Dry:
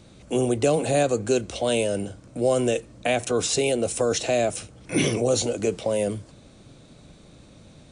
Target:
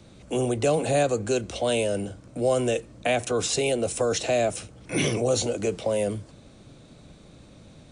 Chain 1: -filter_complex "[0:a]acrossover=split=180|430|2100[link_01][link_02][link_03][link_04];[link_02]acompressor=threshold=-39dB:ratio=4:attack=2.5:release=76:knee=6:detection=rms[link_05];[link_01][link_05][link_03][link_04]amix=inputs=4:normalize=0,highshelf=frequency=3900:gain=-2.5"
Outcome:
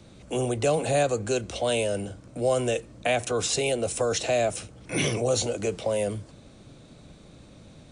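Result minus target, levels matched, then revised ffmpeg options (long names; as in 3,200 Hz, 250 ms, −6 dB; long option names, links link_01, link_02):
downward compressor: peak gain reduction +7 dB
-filter_complex "[0:a]acrossover=split=180|430|2100[link_01][link_02][link_03][link_04];[link_02]acompressor=threshold=-29.5dB:ratio=4:attack=2.5:release=76:knee=6:detection=rms[link_05];[link_01][link_05][link_03][link_04]amix=inputs=4:normalize=0,highshelf=frequency=3900:gain=-2.5"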